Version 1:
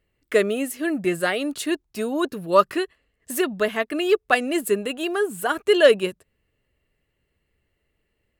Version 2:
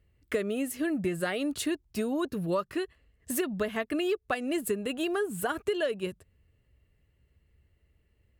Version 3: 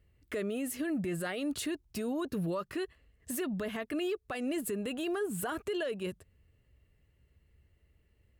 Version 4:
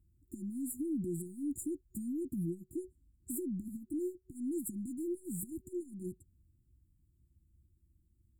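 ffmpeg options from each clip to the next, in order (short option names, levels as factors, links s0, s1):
-af "equalizer=f=72:t=o:w=2.3:g=14,acompressor=threshold=0.0708:ratio=10,volume=0.708"
-af "alimiter=level_in=1.41:limit=0.0631:level=0:latency=1:release=18,volume=0.708"
-af "aeval=exprs='0.0473*(cos(1*acos(clip(val(0)/0.0473,-1,1)))-cos(1*PI/2))+0.000944*(cos(8*acos(clip(val(0)/0.0473,-1,1)))-cos(8*PI/2))':c=same,afftfilt=real='re*(1-between(b*sr/4096,370,6900))':imag='im*(1-between(b*sr/4096,370,6900))':win_size=4096:overlap=0.75,volume=0.794"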